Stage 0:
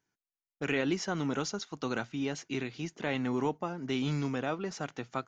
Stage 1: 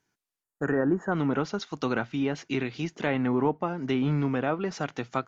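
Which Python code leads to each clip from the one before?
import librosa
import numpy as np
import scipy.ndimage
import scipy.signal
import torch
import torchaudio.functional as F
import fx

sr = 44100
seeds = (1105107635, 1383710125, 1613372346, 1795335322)

y = fx.env_lowpass_down(x, sr, base_hz=1600.0, full_db=-27.0)
y = fx.spec_box(y, sr, start_s=0.43, length_s=0.69, low_hz=1900.0, high_hz=6500.0, gain_db=-23)
y = y * librosa.db_to_amplitude(6.0)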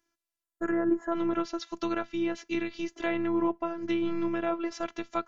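y = fx.robotise(x, sr, hz=336.0)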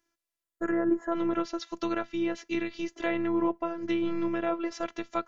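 y = fx.small_body(x, sr, hz=(510.0, 1900.0), ring_ms=45, db=7)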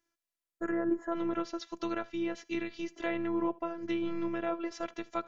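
y = x + 10.0 ** (-23.0 / 20.0) * np.pad(x, (int(76 * sr / 1000.0), 0))[:len(x)]
y = y * librosa.db_to_amplitude(-4.0)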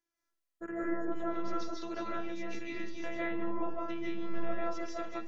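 y = fx.rev_freeverb(x, sr, rt60_s=0.51, hf_ratio=0.5, predelay_ms=115, drr_db=-5.5)
y = y * librosa.db_to_amplitude(-7.5)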